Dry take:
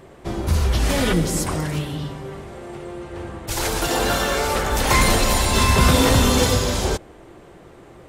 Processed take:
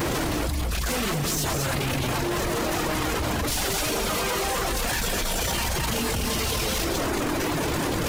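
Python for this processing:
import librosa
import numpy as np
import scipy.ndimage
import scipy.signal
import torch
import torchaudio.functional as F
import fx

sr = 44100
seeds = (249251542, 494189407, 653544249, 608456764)

p1 = np.sign(x) * np.sqrt(np.mean(np.square(x)))
p2 = fx.dereverb_blind(p1, sr, rt60_s=1.8)
p3 = fx.hum_notches(p2, sr, base_hz=50, count=9)
p4 = fx.pitch_keep_formants(p3, sr, semitones=-2.0)
p5 = 10.0 ** (-19.5 / 20.0) * (np.abs((p4 / 10.0 ** (-19.5 / 20.0) + 3.0) % 4.0 - 2.0) - 1.0)
p6 = p4 + (p5 * 10.0 ** (-8.5 / 20.0))
p7 = fx.formant_shift(p6, sr, semitones=-4)
p8 = p7 + fx.echo_single(p7, sr, ms=222, db=-6.0, dry=0)
p9 = fx.env_flatten(p8, sr, amount_pct=100)
y = p9 * 10.0 ** (-7.0 / 20.0)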